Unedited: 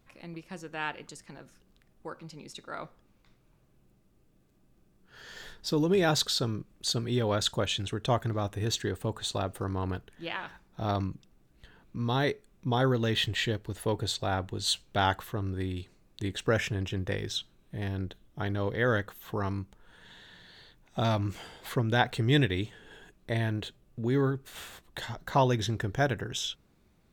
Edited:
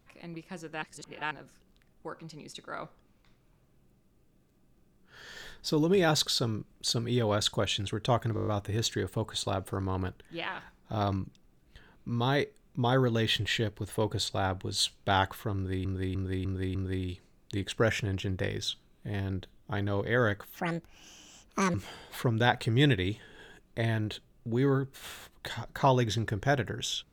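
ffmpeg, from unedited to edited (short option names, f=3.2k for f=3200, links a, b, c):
-filter_complex "[0:a]asplit=15[a][b][c][d][e][f][g][h][i][j][k][l][m][n][o];[a]atrim=end=0.822[p];[b]atrim=start=0.818:end=1.312,asetpts=PTS-STARTPTS,areverse[q];[c]atrim=start=1.308:end=8.372[r];[d]atrim=start=8.348:end=8.372[s];[e]atrim=start=8.348:end=8.372[t];[f]atrim=start=8.348:end=8.372[u];[g]atrim=start=8.348:end=8.372[v];[h]atrim=start=8.348:end=8.372[w];[i]atrim=start=8.348:end=15.732[x];[j]atrim=start=15.428:end=15.732[y];[k]atrim=start=15.428:end=15.732[z];[l]atrim=start=15.428:end=15.732[aa];[m]atrim=start=15.428:end=19.244[ab];[n]atrim=start=19.24:end=21.26,asetpts=PTS-STARTPTS,asetrate=75411,aresample=44100[ac];[o]atrim=start=21.256[ad];[p][q]acrossfade=d=0.004:c1=hsin:c2=hsin[ae];[ae][r]acrossfade=d=0.004:c1=hsin:c2=hsin[af];[af][s]acrossfade=d=0.004:c1=hsin:c2=hsin[ag];[ag][t]acrossfade=d=0.004:c1=hsin:c2=hsin[ah];[ah][u]acrossfade=d=0.004:c1=hsin:c2=hsin[ai];[ai][v]acrossfade=d=0.004:c1=hsin:c2=hsin[aj];[aj][w]acrossfade=d=0.004:c1=hsin:c2=hsin[ak];[ak][x]acrossfade=d=0.004:c1=hsin:c2=hsin[al];[al][y]acrossfade=d=0.004:c1=hsin:c2=hsin[am];[am][z]acrossfade=d=0.004:c1=hsin:c2=hsin[an];[an][aa]acrossfade=d=0.004:c1=hsin:c2=hsin[ao];[ao][ab]acrossfade=d=0.004:c1=hsin:c2=hsin[ap];[ap][ac]acrossfade=d=0.004:c1=hsin:c2=hsin[aq];[aq][ad]acrossfade=d=0.004:c1=hsin:c2=hsin"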